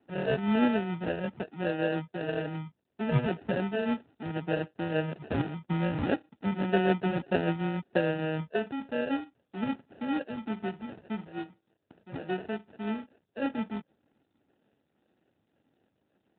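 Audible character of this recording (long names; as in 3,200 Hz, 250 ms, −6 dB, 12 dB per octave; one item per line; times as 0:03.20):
phaser sweep stages 12, 1.8 Hz, lowest notch 540–1,300 Hz
aliases and images of a low sample rate 1,100 Hz, jitter 0%
tremolo triangle 6.7 Hz, depth 40%
AMR narrowband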